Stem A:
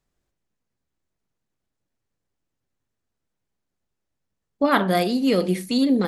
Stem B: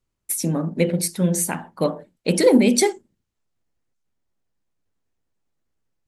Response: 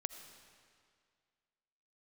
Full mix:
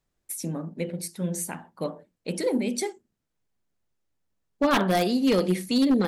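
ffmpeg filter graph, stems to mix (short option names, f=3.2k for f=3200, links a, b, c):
-filter_complex "[0:a]aeval=exprs='0.224*(abs(mod(val(0)/0.224+3,4)-2)-1)':c=same,volume=-1.5dB[a];[1:a]dynaudnorm=f=110:g=5:m=6dB,volume=-14dB[b];[a][b]amix=inputs=2:normalize=0"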